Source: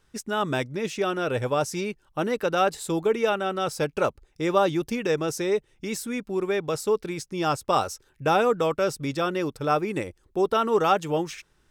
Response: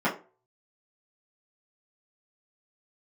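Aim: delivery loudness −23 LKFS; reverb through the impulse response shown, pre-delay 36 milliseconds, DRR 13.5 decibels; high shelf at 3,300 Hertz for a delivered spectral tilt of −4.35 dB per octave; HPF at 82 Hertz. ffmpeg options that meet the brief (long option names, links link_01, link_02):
-filter_complex "[0:a]highpass=82,highshelf=frequency=3300:gain=4,asplit=2[link_01][link_02];[1:a]atrim=start_sample=2205,adelay=36[link_03];[link_02][link_03]afir=irnorm=-1:irlink=0,volume=-27dB[link_04];[link_01][link_04]amix=inputs=2:normalize=0,volume=2.5dB"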